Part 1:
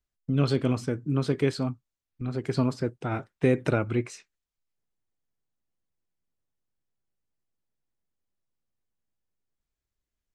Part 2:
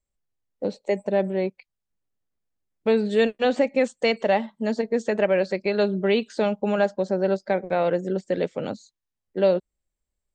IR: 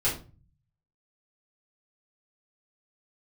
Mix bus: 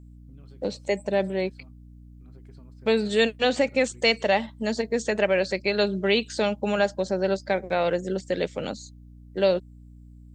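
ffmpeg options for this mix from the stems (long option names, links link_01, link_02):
-filter_complex "[0:a]acompressor=threshold=-32dB:ratio=10,volume=-17.5dB[link_01];[1:a]highshelf=frequency=2200:gain=12,aeval=exprs='val(0)+0.00708*(sin(2*PI*60*n/s)+sin(2*PI*2*60*n/s)/2+sin(2*PI*3*60*n/s)/3+sin(2*PI*4*60*n/s)/4+sin(2*PI*5*60*n/s)/5)':channel_layout=same,volume=-2.5dB[link_02];[link_01][link_02]amix=inputs=2:normalize=0"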